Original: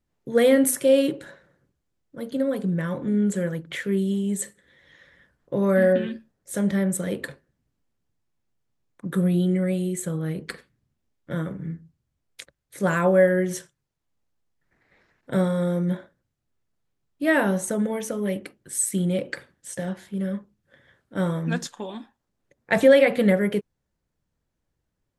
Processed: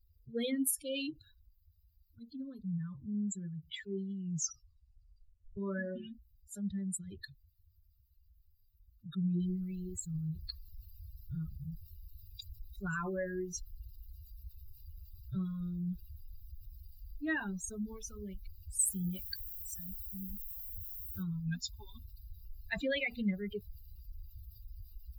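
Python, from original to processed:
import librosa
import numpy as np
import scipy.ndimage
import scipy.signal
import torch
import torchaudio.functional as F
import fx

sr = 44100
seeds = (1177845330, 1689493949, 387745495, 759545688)

y = fx.noise_floor_step(x, sr, seeds[0], at_s=9.4, before_db=-55, after_db=-44, tilt_db=3.0)
y = fx.high_shelf(y, sr, hz=9700.0, db=10.5, at=(18.79, 21.23))
y = fx.edit(y, sr, fx.tape_stop(start_s=4.13, length_s=1.44), tone=tone)
y = fx.bin_expand(y, sr, power=3.0)
y = fx.tone_stack(y, sr, knobs='6-0-2')
y = fx.env_flatten(y, sr, amount_pct=50)
y = y * librosa.db_to_amplitude(6.5)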